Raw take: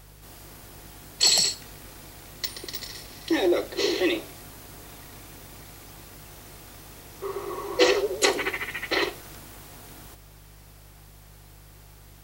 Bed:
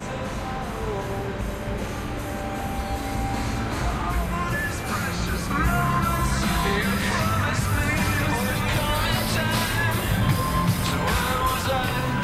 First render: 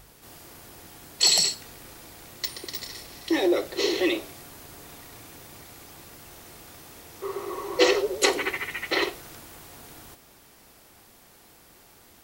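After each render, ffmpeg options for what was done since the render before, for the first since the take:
ffmpeg -i in.wav -af "bandreject=frequency=50:width_type=h:width=4,bandreject=frequency=100:width_type=h:width=4,bandreject=frequency=150:width_type=h:width=4,bandreject=frequency=200:width_type=h:width=4,bandreject=frequency=250:width_type=h:width=4" out.wav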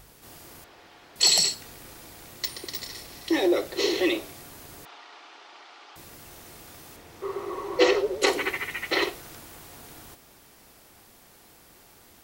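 ffmpeg -i in.wav -filter_complex "[0:a]asettb=1/sr,asplit=3[link_01][link_02][link_03];[link_01]atrim=end=0.644[link_04];[link_02]atrim=start=0.64:end=1.16,asetpts=PTS-STARTPTS,afade=type=in:duration=0.004:curve=qsin,afade=type=out:start_time=0.516:duration=0.004:curve=qsin,acrossover=split=370 4700:gain=0.251 1 0.0891[link_05][link_06][link_07];[link_05][link_06][link_07]amix=inputs=3:normalize=0[link_08];[link_03]atrim=start=1.156[link_09];[link_04][link_08]acrossfade=duration=0.004:curve1=hsin:curve2=qsin[link_10];[link_10][link_09]acrossfade=duration=0.004:curve1=qsin:curve2=hsin,asettb=1/sr,asplit=3[link_11][link_12][link_13];[link_11]atrim=end=4.854[link_14];[link_12]atrim=start=4.85:end=5.96,asetpts=PTS-STARTPTS,afade=type=in:duration=0.004:curve=qsin,afade=type=out:start_time=1.106:duration=0.004:curve=qsin,highpass=frequency=400:width=0.5412,highpass=frequency=400:width=1.3066,equalizer=frequency=500:width_type=q:width=4:gain=-8,equalizer=frequency=860:width_type=q:width=4:gain=5,equalizer=frequency=1300:width_type=q:width=4:gain=6,equalizer=frequency=3000:width_type=q:width=4:gain=4,lowpass=frequency=4900:width=0.5412,lowpass=frequency=4900:width=1.3066[link_15];[link_13]atrim=start=5.956[link_16];[link_14][link_15]acrossfade=duration=0.004:curve1=hsin:curve2=qsin[link_17];[link_17][link_16]acrossfade=duration=0.004:curve1=qsin:curve2=hsin,asettb=1/sr,asplit=3[link_18][link_19][link_20];[link_18]atrim=end=6.964[link_21];[link_19]atrim=start=6.96:end=8.27,asetpts=PTS-STARTPTS,afade=type=in:duration=0.004:curve=qsin,afade=type=out:start_time=1.306:duration=0.004:curve=qsin,aemphasis=mode=reproduction:type=cd[link_22];[link_20]atrim=start=8.266[link_23];[link_21][link_22]acrossfade=duration=0.004:curve1=hsin:curve2=qsin[link_24];[link_24][link_23]acrossfade=duration=0.004:curve1=qsin:curve2=hsin" out.wav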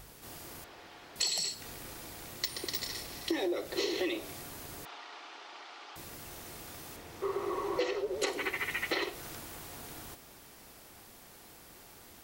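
ffmpeg -i in.wav -af "acompressor=threshold=-29dB:ratio=12" out.wav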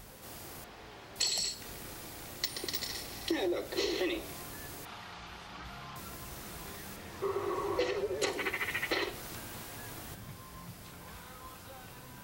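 ffmpeg -i in.wav -i bed.wav -filter_complex "[1:a]volume=-27dB[link_01];[0:a][link_01]amix=inputs=2:normalize=0" out.wav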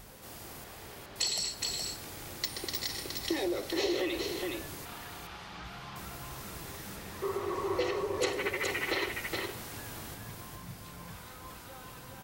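ffmpeg -i in.wav -af "aecho=1:1:418:0.668" out.wav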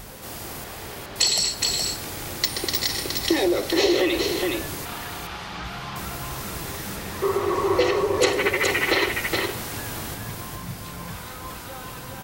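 ffmpeg -i in.wav -af "volume=11dB" out.wav

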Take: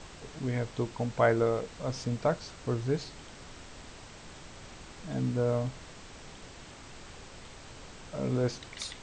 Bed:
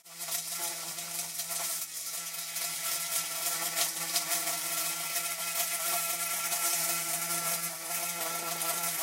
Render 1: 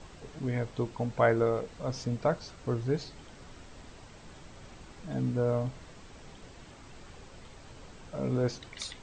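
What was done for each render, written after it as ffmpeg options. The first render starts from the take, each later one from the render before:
ffmpeg -i in.wav -af "afftdn=noise_reduction=6:noise_floor=-49" out.wav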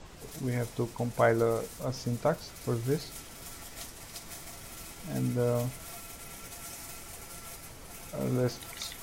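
ffmpeg -i in.wav -i bed.wav -filter_complex "[1:a]volume=-14.5dB[link_01];[0:a][link_01]amix=inputs=2:normalize=0" out.wav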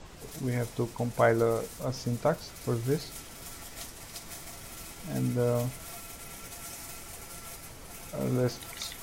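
ffmpeg -i in.wav -af "volume=1dB" out.wav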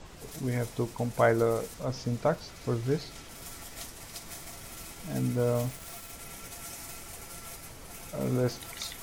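ffmpeg -i in.wav -filter_complex "[0:a]asettb=1/sr,asplit=3[link_01][link_02][link_03];[link_01]atrim=end=1.744[link_04];[link_02]atrim=start=1.74:end=3.29,asetpts=PTS-STARTPTS,afade=type=in:duration=0.004:curve=qsin,afade=type=out:start_time=1.546:duration=0.004:curve=qsin,acrossover=split=6700[link_05][link_06];[link_06]acompressor=threshold=-57dB:ratio=4:attack=1:release=60[link_07];[link_05][link_07]amix=inputs=2:normalize=0[link_08];[link_03]atrim=start=3.286[link_09];[link_04][link_08]acrossfade=duration=0.004:curve1=hsin:curve2=qsin[link_10];[link_10][link_09]acrossfade=duration=0.004:curve1=qsin:curve2=hsin,asettb=1/sr,asplit=3[link_11][link_12][link_13];[link_11]atrim=end=5.344[link_14];[link_12]atrim=start=5.34:end=6.12,asetpts=PTS-STARTPTS,afade=type=in:duration=0.004:curve=qsin,afade=type=out:start_time=0.776:duration=0.004:curve=qsin,aeval=exprs='val(0)*gte(abs(val(0)),0.00668)':channel_layout=same[link_15];[link_13]atrim=start=6.116[link_16];[link_14][link_15]acrossfade=duration=0.004:curve1=hsin:curve2=qsin[link_17];[link_17][link_16]acrossfade=duration=0.004:curve1=qsin:curve2=hsin" out.wav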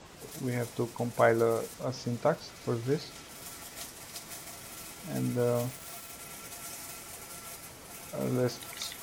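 ffmpeg -i in.wav -af "highpass=frequency=140:poles=1" out.wav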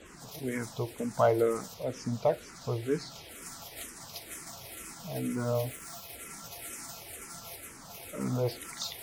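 ffmpeg -i in.wav -filter_complex "[0:a]asplit=2[link_01][link_02];[link_02]asoftclip=type=tanh:threshold=-27.5dB,volume=-8.5dB[link_03];[link_01][link_03]amix=inputs=2:normalize=0,asplit=2[link_04][link_05];[link_05]afreqshift=-2.1[link_06];[link_04][link_06]amix=inputs=2:normalize=1" out.wav

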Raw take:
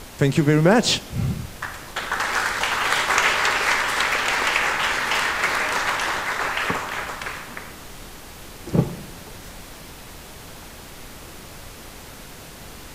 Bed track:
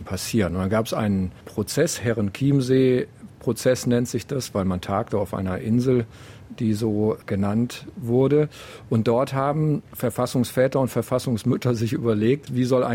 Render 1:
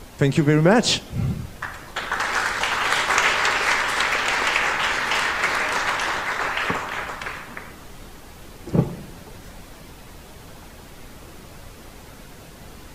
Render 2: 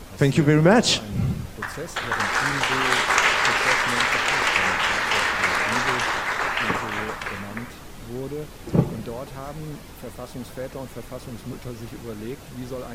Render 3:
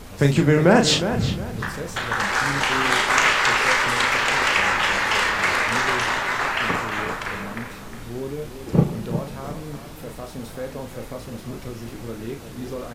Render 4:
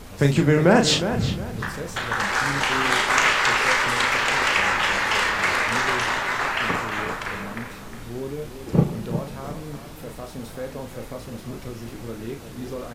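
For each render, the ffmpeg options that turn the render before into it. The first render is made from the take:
ffmpeg -i in.wav -af "afftdn=noise_reduction=6:noise_floor=-41" out.wav
ffmpeg -i in.wav -i bed.wav -filter_complex "[1:a]volume=-13.5dB[link_01];[0:a][link_01]amix=inputs=2:normalize=0" out.wav
ffmpeg -i in.wav -filter_complex "[0:a]asplit=2[link_01][link_02];[link_02]adelay=35,volume=-6dB[link_03];[link_01][link_03]amix=inputs=2:normalize=0,asplit=2[link_04][link_05];[link_05]adelay=360,lowpass=frequency=3100:poles=1,volume=-9.5dB,asplit=2[link_06][link_07];[link_07]adelay=360,lowpass=frequency=3100:poles=1,volume=0.32,asplit=2[link_08][link_09];[link_09]adelay=360,lowpass=frequency=3100:poles=1,volume=0.32,asplit=2[link_10][link_11];[link_11]adelay=360,lowpass=frequency=3100:poles=1,volume=0.32[link_12];[link_04][link_06][link_08][link_10][link_12]amix=inputs=5:normalize=0" out.wav
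ffmpeg -i in.wav -af "volume=-1dB" out.wav

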